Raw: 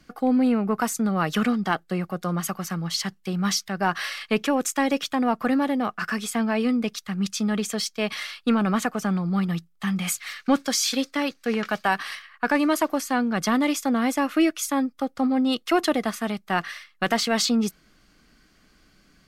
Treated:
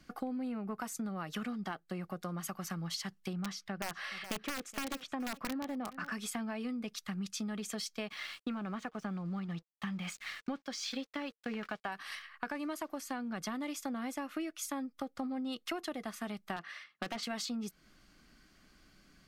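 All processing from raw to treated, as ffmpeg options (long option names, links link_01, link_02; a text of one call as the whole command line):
ffmpeg -i in.wav -filter_complex "[0:a]asettb=1/sr,asplit=3[link_01][link_02][link_03];[link_01]atrim=end=3.334[link_04];[link_02]atrim=start=3.33:end=6.12,asetpts=PTS-STARTPTS,afade=type=in:duration=0.004:curve=qsin,afade=type=out:start_time=2.786:duration=0.004:curve=qsin,lowpass=frequency=2200:poles=1,aeval=exprs='(mod(5.31*val(0)+1,2)-1)/5.31':channel_layout=same,aecho=1:1:422:0.1,atrim=end_sample=123039[link_05];[link_03]atrim=start=6.116[link_06];[link_04][link_05]acrossfade=duration=0.004:curve1=hsin:curve2=qsin[link_07];[link_07][link_06]acrossfade=duration=0.004:curve1=qsin:curve2=hsin,asettb=1/sr,asplit=3[link_08][link_09][link_10];[link_08]atrim=end=8.084[link_11];[link_09]atrim=start=8.08:end=11.92,asetpts=PTS-STARTPTS,afade=type=in:duration=0.004:curve=qsin,afade=type=out:start_time=3.836:duration=0.004:curve=qsin,lowpass=4600,aeval=exprs='sgn(val(0))*max(abs(val(0))-0.00376,0)':channel_layout=same[link_12];[link_10]atrim=start=11.916[link_13];[link_11][link_12]acrossfade=duration=0.004:curve1=hsin:curve2=qsin[link_14];[link_14][link_13]acrossfade=duration=0.004:curve1=qsin:curve2=hsin,asettb=1/sr,asplit=3[link_15][link_16][link_17];[link_15]atrim=end=16.564[link_18];[link_16]atrim=start=16.56:end=17.23,asetpts=PTS-STARTPTS,afade=type=in:duration=0.004:curve=qsin,afade=type=out:start_time=0.666:duration=0.004:curve=qsin,highpass=150,aemphasis=mode=reproduction:type=50fm,aeval=exprs='0.178*(abs(mod(val(0)/0.178+3,4)-2)-1)':channel_layout=same[link_19];[link_17]atrim=start=17.226[link_20];[link_18][link_19]acrossfade=duration=0.004:curve1=hsin:curve2=qsin[link_21];[link_21][link_20]acrossfade=duration=0.004:curve1=qsin:curve2=hsin,bandreject=frequency=460:width=12,acompressor=threshold=-31dB:ratio=10,volume=-4.5dB" out.wav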